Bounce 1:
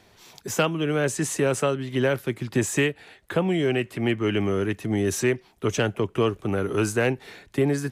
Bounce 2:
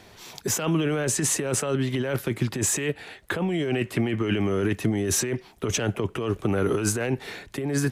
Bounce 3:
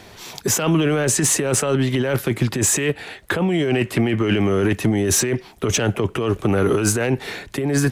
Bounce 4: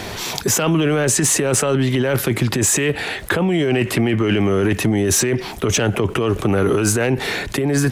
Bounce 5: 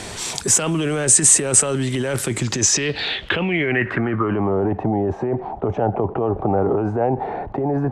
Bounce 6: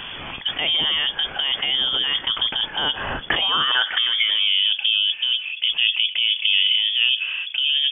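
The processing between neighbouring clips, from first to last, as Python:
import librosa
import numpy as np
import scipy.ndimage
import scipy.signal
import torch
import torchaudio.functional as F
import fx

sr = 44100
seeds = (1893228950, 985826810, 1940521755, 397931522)

y1 = fx.over_compress(x, sr, threshold_db=-27.0, ratio=-1.0)
y1 = F.gain(torch.from_numpy(y1), 2.5).numpy()
y2 = 10.0 ** (-14.5 / 20.0) * np.tanh(y1 / 10.0 ** (-14.5 / 20.0))
y2 = F.gain(torch.from_numpy(y2), 7.0).numpy()
y3 = fx.env_flatten(y2, sr, amount_pct=50)
y4 = fx.dmg_noise_colour(y3, sr, seeds[0], colour='pink', level_db=-46.0)
y4 = fx.filter_sweep_lowpass(y4, sr, from_hz=8500.0, to_hz=790.0, start_s=2.3, end_s=4.62, q=5.1)
y4 = F.gain(torch.from_numpy(y4), -4.5).numpy()
y5 = fx.freq_invert(y4, sr, carrier_hz=3400)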